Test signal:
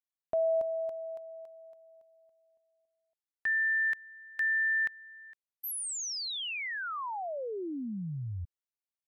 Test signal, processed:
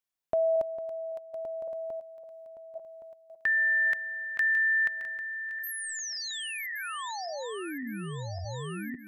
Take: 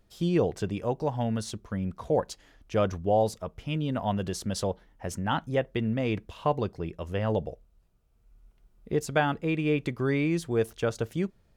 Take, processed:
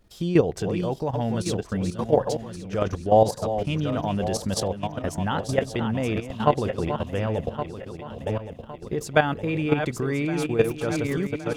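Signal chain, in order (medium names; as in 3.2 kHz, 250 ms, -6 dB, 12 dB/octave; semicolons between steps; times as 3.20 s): backward echo that repeats 559 ms, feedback 63%, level -7.5 dB; level held to a coarse grid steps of 11 dB; trim +8 dB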